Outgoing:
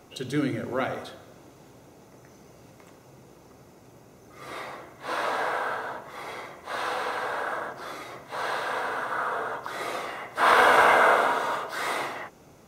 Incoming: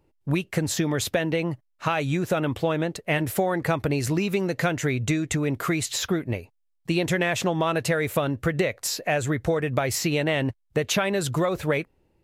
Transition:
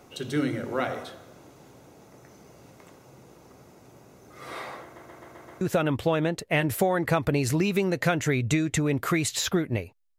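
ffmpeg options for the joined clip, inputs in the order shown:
-filter_complex "[0:a]apad=whole_dur=10.18,atrim=end=10.18,asplit=6[s0][s1][s2][s3][s4][s5];[s0]atrim=end=4.962[s6];[s1]atrim=start=4.828:end=4.962[s7];[s2]atrim=start=4.828:end=4.962[s8];[s3]atrim=start=4.828:end=4.962[s9];[s4]atrim=start=4.828:end=4.962[s10];[s5]atrim=start=4.828:end=4.962[s11];[1:a]atrim=start=2.178:end=6.75[s12];[s6][s7]acrossfade=d=0.004:c1=hsin:c2=hsin[s13];[s13][s8]acrossfade=d=0.004:c1=hsin:c2=hsin[s14];[s14][s9]acrossfade=d=0.004:c1=hsin:c2=hsin[s15];[s15][s10]acrossfade=d=0.004:c1=hsin:c2=hsin[s16];[s16][s11]acrossfade=d=0.004:c1=hsin:c2=hsin[s17];[s17][s12]acrossfade=d=0.004:c1=hsin:c2=hsin"

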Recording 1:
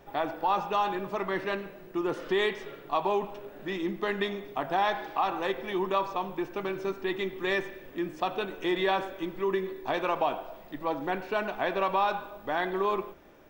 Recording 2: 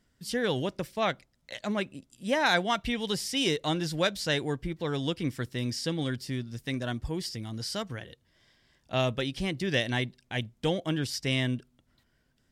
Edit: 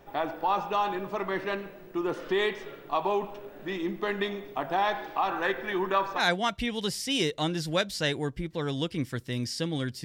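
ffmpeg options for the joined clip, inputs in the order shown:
-filter_complex "[0:a]asettb=1/sr,asplit=3[s0][s1][s2];[s0]atrim=end=5.304[s3];[s1]atrim=start=5.3:end=6.23,asetpts=PTS-STARTPTS,afade=t=in:d=0.004:c=qsin,afade=t=out:st=0.926:d=0.004:c=qsin,equalizer=f=1600:t=o:w=0.49:g=11[s4];[s2]atrim=start=6.226[s5];[s3][s4]acrossfade=d=0.004:c1=hsin:c2=qsin[s6];[s6][s5]acrossfade=d=0.004:c1=qsin:c2=hsin,apad=whole_dur=10.04,atrim=end=10.04,atrim=end=6.23,asetpts=PTS-STARTPTS[s7];[1:a]atrim=start=2.41:end=6.3,asetpts=PTS-STARTPTS[s8];[s7][s8]acrossfade=d=0.08:c1=tri:c2=tri"

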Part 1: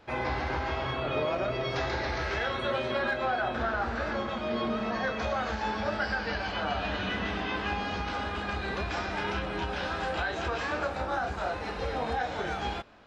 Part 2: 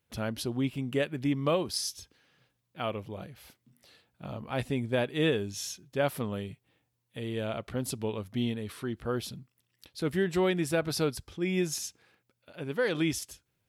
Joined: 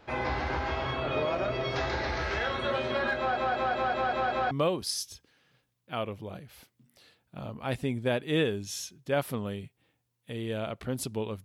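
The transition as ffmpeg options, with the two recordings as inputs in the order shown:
-filter_complex "[0:a]apad=whole_dur=11.44,atrim=end=11.44,asplit=7[s0][s1][s2][s3][s4][s5][s6];[s0]atrim=end=3.372[s7];[s1]atrim=start=3.178:end=3.372[s8];[s2]atrim=start=3.178:end=3.372[s9];[s3]atrim=start=3.178:end=3.372[s10];[s4]atrim=start=3.178:end=3.372[s11];[s5]atrim=start=3.178:end=3.372[s12];[s6]atrim=start=3.178:end=3.372[s13];[1:a]atrim=start=1.378:end=8.31[s14];[s7][s8]acrossfade=d=0.004:c1=hsin:c2=hsin[s15];[s15][s9]acrossfade=d=0.004:c1=hsin:c2=hsin[s16];[s16][s10]acrossfade=d=0.004:c1=hsin:c2=hsin[s17];[s17][s11]acrossfade=d=0.004:c1=hsin:c2=hsin[s18];[s18][s12]acrossfade=d=0.004:c1=hsin:c2=hsin[s19];[s19][s13]acrossfade=d=0.004:c1=hsin:c2=hsin[s20];[s20][s14]acrossfade=d=0.004:c1=hsin:c2=hsin"

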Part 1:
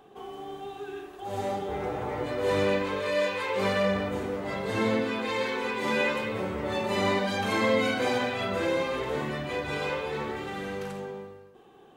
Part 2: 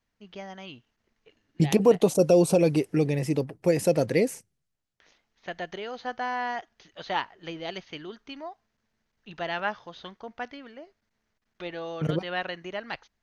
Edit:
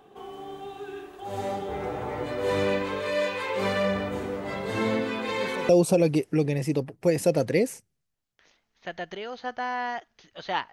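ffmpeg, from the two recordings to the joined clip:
-filter_complex "[1:a]asplit=2[s0][s1];[0:a]apad=whole_dur=10.72,atrim=end=10.72,atrim=end=5.692[s2];[s1]atrim=start=2.298:end=7.33[s3];[s0]atrim=start=1.9:end=2.3,asetpts=PTS-STARTPTS,volume=0.15,afade=t=in:d=0.004:c=hsin,afade=t=out:st=0.396:d=0.004:c=hsin,adelay=233289S[s4];[s2][s3]acrossfade=d=0.004:c1=hsin:c2=hsin[s5];[s5][s4]amix=inputs=2:normalize=0"

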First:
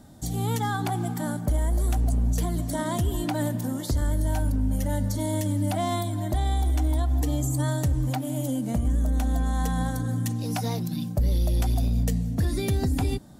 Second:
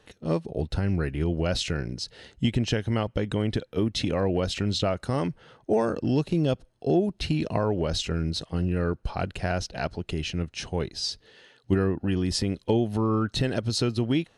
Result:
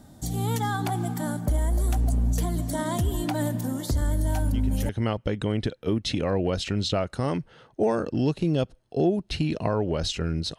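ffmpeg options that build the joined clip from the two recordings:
-filter_complex "[1:a]asplit=2[s0][s1];[0:a]apad=whole_dur=10.58,atrim=end=10.58,atrim=end=4.892[s2];[s1]atrim=start=2.788:end=8.48[s3];[s0]atrim=start=2.19:end=2.79,asetpts=PTS-STARTPTS,volume=0.224,afade=t=in:d=0.004:c=hsin,afade=t=out:st=0.596:d=0.004:c=hsin,adelay=189189S[s4];[s2][s3]acrossfade=d=0.004:c1=hsin:c2=hsin[s5];[s5][s4]amix=inputs=2:normalize=0"

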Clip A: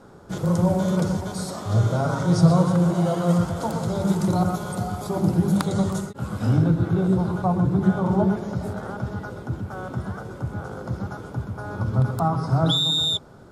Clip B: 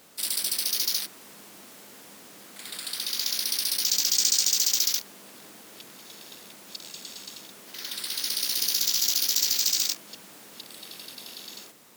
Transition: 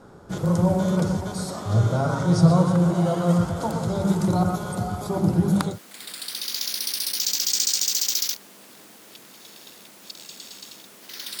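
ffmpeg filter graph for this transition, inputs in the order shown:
-filter_complex "[0:a]apad=whole_dur=11.4,atrim=end=11.4,atrim=end=5.79,asetpts=PTS-STARTPTS[s0];[1:a]atrim=start=2.3:end=8.05,asetpts=PTS-STARTPTS[s1];[s0][s1]acrossfade=d=0.14:c1=tri:c2=tri"

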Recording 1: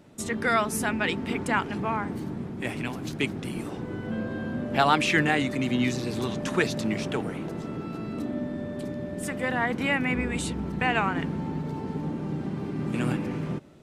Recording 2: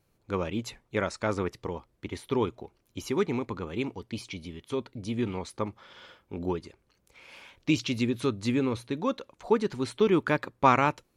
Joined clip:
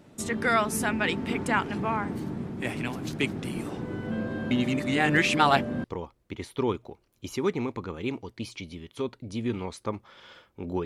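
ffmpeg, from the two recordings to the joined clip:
-filter_complex "[0:a]apad=whole_dur=10.85,atrim=end=10.85,asplit=2[s0][s1];[s0]atrim=end=4.512[s2];[s1]atrim=start=4.508:end=5.842,asetpts=PTS-STARTPTS,areverse[s3];[1:a]atrim=start=1.568:end=6.58[s4];[s2][s3]acrossfade=d=0.004:c1=hsin:c2=hsin[s5];[s5][s4]acrossfade=d=0.004:c1=hsin:c2=hsin"

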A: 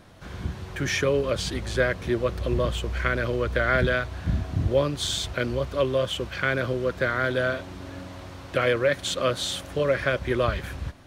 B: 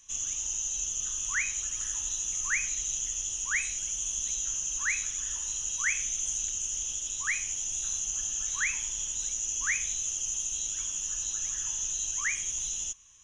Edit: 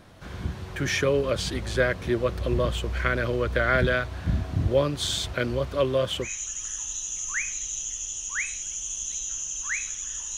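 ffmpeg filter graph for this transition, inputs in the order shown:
-filter_complex "[0:a]apad=whole_dur=10.37,atrim=end=10.37,atrim=end=6.31,asetpts=PTS-STARTPTS[s0];[1:a]atrim=start=1.37:end=5.53,asetpts=PTS-STARTPTS[s1];[s0][s1]acrossfade=d=0.1:c1=tri:c2=tri"

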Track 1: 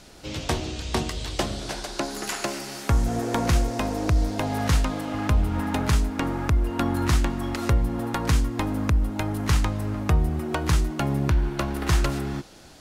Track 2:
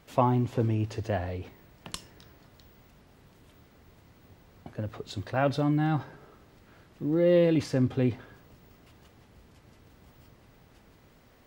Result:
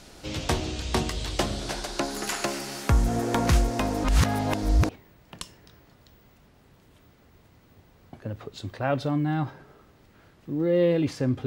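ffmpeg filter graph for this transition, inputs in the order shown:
-filter_complex "[0:a]apad=whole_dur=11.46,atrim=end=11.46,asplit=2[s0][s1];[s0]atrim=end=4.042[s2];[s1]atrim=start=4.038:end=4.892,asetpts=PTS-STARTPTS,areverse[s3];[1:a]atrim=start=1.418:end=7.99[s4];[s2][s3]acrossfade=d=0.004:c1=hsin:c2=hsin[s5];[s5][s4]acrossfade=d=0.004:c1=hsin:c2=hsin"

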